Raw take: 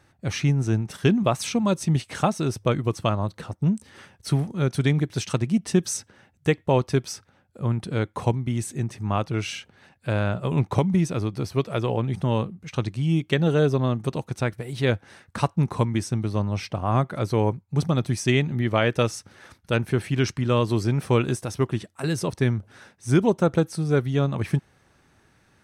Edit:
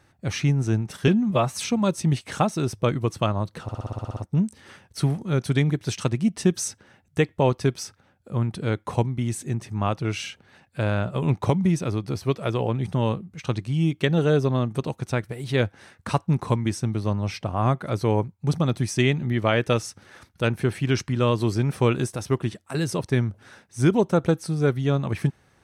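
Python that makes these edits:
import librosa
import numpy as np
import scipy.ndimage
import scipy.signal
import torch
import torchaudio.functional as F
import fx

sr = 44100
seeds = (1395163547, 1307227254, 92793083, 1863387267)

y = fx.edit(x, sr, fx.stretch_span(start_s=1.08, length_s=0.34, factor=1.5),
    fx.stutter(start_s=3.46, slice_s=0.06, count=10), tone=tone)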